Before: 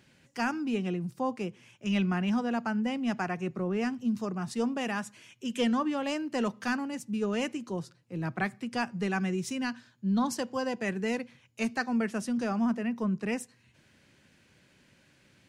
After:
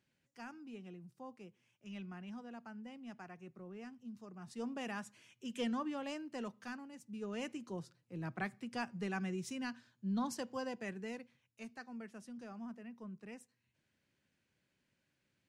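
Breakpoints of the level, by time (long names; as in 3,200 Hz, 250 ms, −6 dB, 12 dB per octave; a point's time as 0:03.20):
0:04.26 −19.5 dB
0:04.75 −10 dB
0:05.98 −10 dB
0:06.91 −17 dB
0:07.56 −9 dB
0:10.60 −9 dB
0:11.67 −19 dB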